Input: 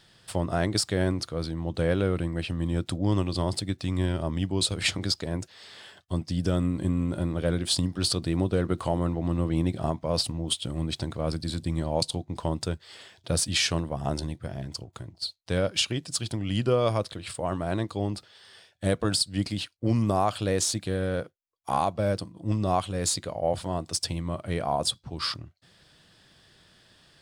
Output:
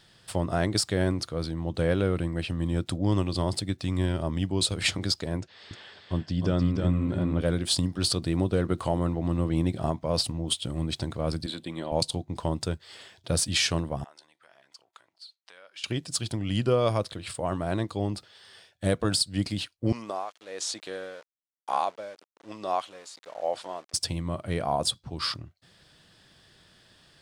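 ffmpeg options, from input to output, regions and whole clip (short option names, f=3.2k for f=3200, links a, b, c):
-filter_complex "[0:a]asettb=1/sr,asplit=3[a][b][c];[a]atrim=end=5.404[d];[b]atrim=start=5.4:end=7.41,asetpts=PTS-STARTPTS,afade=t=in:d=0.004:c=qsin,afade=t=out:st=2.006:d=0.004:c=qsin,lowpass=4.4k,aecho=1:1:308:0.596,atrim=end_sample=88641[e];[c]atrim=start=7.406[f];[d][e]acrossfade=d=0.004:c1=hsin:c2=qsin[g];[g][f]acrossfade=d=0.004:c1=qsin:c2=hsin,asettb=1/sr,asplit=3[h][i][j];[h]atrim=end=11.464[k];[i]atrim=start=11.46:end=11.92,asetpts=PTS-STARTPTS,afade=t=in:d=0.004:c=qsin,afade=t=out:st=0.456:d=0.004:c=qsin,highpass=280,highshelf=f=4.3k:t=q:w=3:g=-6[l];[j]atrim=start=11.916[m];[k][l]acrossfade=d=0.004:c1=hsin:c2=qsin[n];[n][m]acrossfade=d=0.004:c1=qsin:c2=hsin,asettb=1/sr,asplit=3[o][p][q];[o]atrim=end=14.044[r];[p]atrim=start=14.04:end=15.84,asetpts=PTS-STARTPTS,afade=t=in:d=0.004:c=qsin,afade=t=out:st=1.796:d=0.004:c=qsin,acompressor=threshold=-39dB:ratio=3:attack=3.2:release=140:knee=1:detection=peak,highpass=1.2k,highshelf=f=4.2k:g=-11.5[s];[q]atrim=start=15.836[t];[r][s]acrossfade=d=0.004:c1=hsin:c2=qsin[u];[u][t]acrossfade=d=0.004:c1=qsin:c2=hsin,asettb=1/sr,asplit=3[v][w][x];[v]atrim=end=19.924[y];[w]atrim=start=19.92:end=23.94,asetpts=PTS-STARTPTS,afade=t=in:d=0.004:c=qsin,afade=t=out:st=4.016:d=0.004:c=qsin,tremolo=f=1.1:d=0.84,aeval=exprs='val(0)*gte(abs(val(0)),0.00531)':c=same,highpass=510,lowpass=6.9k[z];[x]atrim=start=23.936[aa];[y][z]acrossfade=d=0.004:c1=hsin:c2=qsin[ab];[ab][aa]acrossfade=d=0.004:c1=qsin:c2=hsin"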